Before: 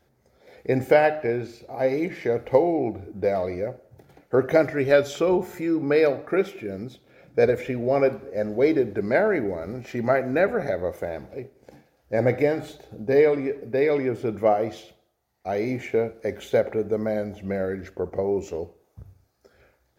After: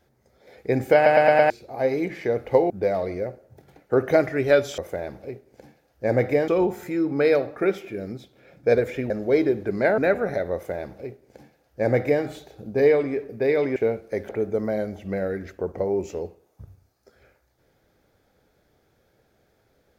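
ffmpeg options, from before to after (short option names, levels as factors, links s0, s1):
-filter_complex "[0:a]asplit=13[s0][s1][s2][s3][s4][s5][s6][s7][s8][s9][s10][s11][s12];[s0]atrim=end=1.062[s13];[s1]atrim=start=0.948:end=1.062[s14];[s2]atrim=start=0.948:end=1.062[s15];[s3]atrim=start=0.948:end=1.062[s16];[s4]atrim=start=0.948:end=1.062[s17];[s5]atrim=start=1.498:end=2.702[s18];[s6]atrim=start=3.108:end=5.192[s19];[s7]atrim=start=10.868:end=12.572[s20];[s8]atrim=start=5.188:end=7.812[s21];[s9]atrim=start=8.398:end=9.282[s22];[s10]atrim=start=10.308:end=14.092[s23];[s11]atrim=start=15.878:end=16.412[s24];[s12]atrim=start=16.668[s25];[s13][s14]acrossfade=d=0.004:c1=hsin:c2=hsin[s26];[s26][s15]acrossfade=d=0.004:c1=hsin:c2=hsin[s27];[s27][s16]acrossfade=d=0.004:c1=hsin:c2=hsin[s28];[s28][s17]acrossfade=d=0.004:c1=hsin:c2=hsin[s29];[s29][s18]acrossfade=d=0.004:c1=hsin:c2=hsin[s30];[s30][s19]acrossfade=d=0.004:c1=hsin:c2=hsin[s31];[s31][s20]acrossfade=d=0.004:c1=hsin:c2=hsin[s32];[s32][s21]acrossfade=d=0.004:c1=hsin:c2=hsin[s33];[s33][s22]acrossfade=d=0.004:c1=hsin:c2=hsin[s34];[s34][s23]acrossfade=d=0.004:c1=hsin:c2=hsin[s35];[s35][s24]acrossfade=d=0.004:c1=hsin:c2=hsin[s36];[s36][s25]acrossfade=d=0.004:c1=hsin:c2=hsin"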